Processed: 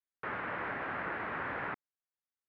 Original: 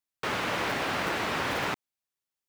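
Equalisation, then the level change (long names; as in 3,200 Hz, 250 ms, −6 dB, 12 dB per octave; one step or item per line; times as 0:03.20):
transistor ladder low-pass 2,100 Hz, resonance 40%
−1.5 dB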